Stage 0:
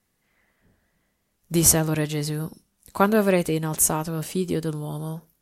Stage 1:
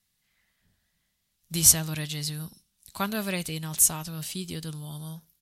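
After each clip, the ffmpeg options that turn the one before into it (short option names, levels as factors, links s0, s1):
-af "firequalizer=gain_entry='entry(150,0);entry(280,-8);entry(450,-11);entry(670,-6);entry(3700,10);entry(6400,6)':delay=0.05:min_phase=1,volume=0.501"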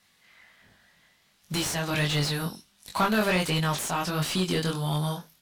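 -filter_complex "[0:a]acompressor=threshold=0.0355:ratio=3,flanger=delay=20:depth=3.4:speed=1.4,asplit=2[s0][s1];[s1]highpass=f=720:p=1,volume=15.8,asoftclip=type=tanh:threshold=0.112[s2];[s0][s2]amix=inputs=2:normalize=0,lowpass=f=1400:p=1,volume=0.501,volume=2.24"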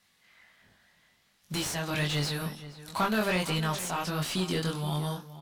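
-filter_complex "[0:a]asplit=2[s0][s1];[s1]adelay=472.3,volume=0.2,highshelf=f=4000:g=-10.6[s2];[s0][s2]amix=inputs=2:normalize=0,volume=0.668"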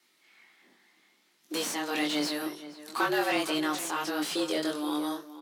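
-af "afreqshift=150"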